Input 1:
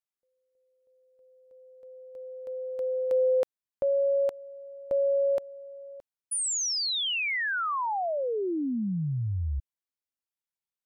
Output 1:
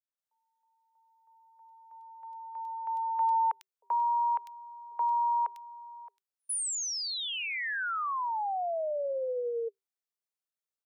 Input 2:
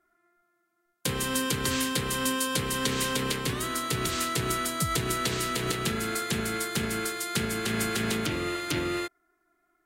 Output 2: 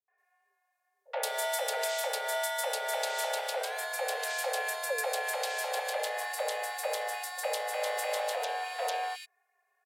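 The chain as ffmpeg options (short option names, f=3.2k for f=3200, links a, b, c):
-filter_complex "[0:a]afreqshift=390,acrossover=split=280|2500[a][b][c];[b]adelay=80[d];[c]adelay=180[e];[a][d][e]amix=inputs=3:normalize=0,adynamicequalizer=threshold=0.00562:dfrequency=2900:dqfactor=0.7:tfrequency=2900:tqfactor=0.7:attack=5:release=100:ratio=0.375:range=2:mode=cutabove:tftype=highshelf,volume=-2.5dB"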